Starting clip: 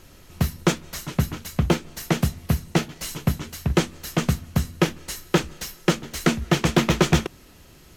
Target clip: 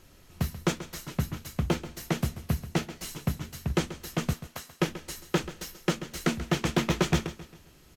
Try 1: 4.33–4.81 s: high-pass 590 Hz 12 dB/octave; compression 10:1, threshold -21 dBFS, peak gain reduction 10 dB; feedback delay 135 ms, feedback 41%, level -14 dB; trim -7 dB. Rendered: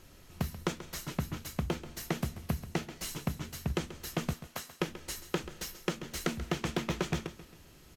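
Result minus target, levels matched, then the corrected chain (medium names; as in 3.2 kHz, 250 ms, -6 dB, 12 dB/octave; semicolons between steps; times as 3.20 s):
compression: peak gain reduction +10 dB
4.33–4.81 s: high-pass 590 Hz 12 dB/octave; feedback delay 135 ms, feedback 41%, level -14 dB; trim -7 dB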